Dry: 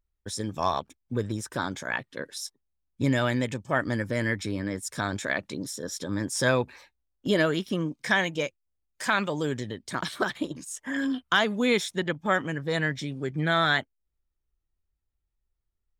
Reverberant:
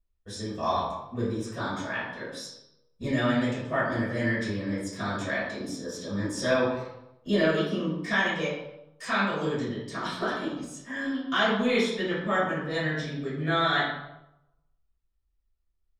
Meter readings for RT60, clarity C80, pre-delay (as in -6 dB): 0.90 s, 4.0 dB, 3 ms